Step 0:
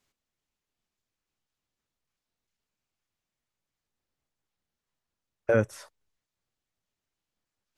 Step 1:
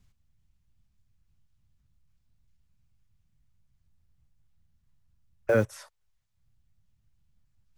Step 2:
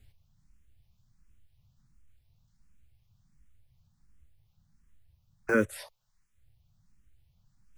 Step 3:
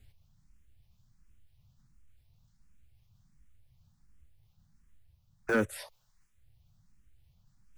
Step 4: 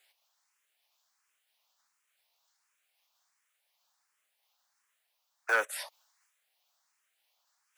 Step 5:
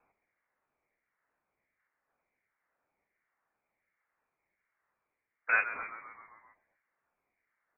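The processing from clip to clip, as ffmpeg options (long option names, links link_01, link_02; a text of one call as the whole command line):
ffmpeg -i in.wav -filter_complex "[0:a]acrossover=split=150|460|1800[link_01][link_02][link_03][link_04];[link_01]acompressor=mode=upward:threshold=-45dB:ratio=2.5[link_05];[link_02]acrusher=bits=7:mix=0:aa=0.000001[link_06];[link_05][link_06][link_03][link_04]amix=inputs=4:normalize=0" out.wav
ffmpeg -i in.wav -filter_complex "[0:a]asplit=2[link_01][link_02];[link_02]alimiter=limit=-23.5dB:level=0:latency=1:release=185,volume=3dB[link_03];[link_01][link_03]amix=inputs=2:normalize=0,asplit=2[link_04][link_05];[link_05]afreqshift=1.4[link_06];[link_04][link_06]amix=inputs=2:normalize=1" out.wav
ffmpeg -i in.wav -af "areverse,acompressor=mode=upward:threshold=-59dB:ratio=2.5,areverse,asoftclip=type=tanh:threshold=-19dB" out.wav
ffmpeg -i in.wav -af "highpass=frequency=650:width=0.5412,highpass=frequency=650:width=1.3066,volume=5dB" out.wav
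ffmpeg -i in.wav -filter_complex "[0:a]asplit=2[link_01][link_02];[link_02]asplit=7[link_03][link_04][link_05][link_06][link_07][link_08][link_09];[link_03]adelay=131,afreqshift=70,volume=-12dB[link_10];[link_04]adelay=262,afreqshift=140,volume=-16dB[link_11];[link_05]adelay=393,afreqshift=210,volume=-20dB[link_12];[link_06]adelay=524,afreqshift=280,volume=-24dB[link_13];[link_07]adelay=655,afreqshift=350,volume=-28.1dB[link_14];[link_08]adelay=786,afreqshift=420,volume=-32.1dB[link_15];[link_09]adelay=917,afreqshift=490,volume=-36.1dB[link_16];[link_10][link_11][link_12][link_13][link_14][link_15][link_16]amix=inputs=7:normalize=0[link_17];[link_01][link_17]amix=inputs=2:normalize=0,lowpass=frequency=2600:width_type=q:width=0.5098,lowpass=frequency=2600:width_type=q:width=0.6013,lowpass=frequency=2600:width_type=q:width=0.9,lowpass=frequency=2600:width_type=q:width=2.563,afreqshift=-3000" out.wav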